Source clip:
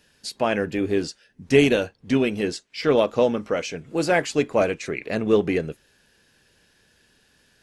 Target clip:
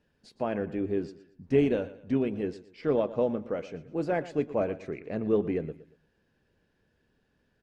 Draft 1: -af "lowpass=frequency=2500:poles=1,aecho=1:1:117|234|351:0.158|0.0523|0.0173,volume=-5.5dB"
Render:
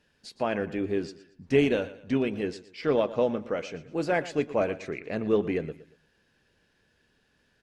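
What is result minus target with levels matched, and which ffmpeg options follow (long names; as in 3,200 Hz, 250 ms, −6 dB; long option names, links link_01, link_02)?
2,000 Hz band +6.0 dB
-af "lowpass=frequency=670:poles=1,aecho=1:1:117|234|351:0.158|0.0523|0.0173,volume=-5.5dB"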